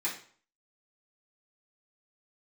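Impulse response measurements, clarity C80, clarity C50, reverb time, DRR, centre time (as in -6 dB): 12.0 dB, 7.5 dB, 0.50 s, -9.0 dB, 24 ms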